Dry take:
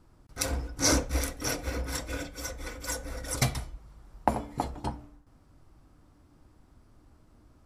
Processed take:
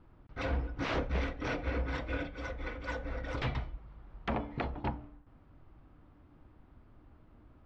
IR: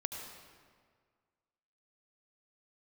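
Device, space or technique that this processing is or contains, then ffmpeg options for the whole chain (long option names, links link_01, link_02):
synthesiser wavefolder: -af "aeval=exprs='0.0562*(abs(mod(val(0)/0.0562+3,4)-2)-1)':channel_layout=same,lowpass=frequency=3200:width=0.5412,lowpass=frequency=3200:width=1.3066"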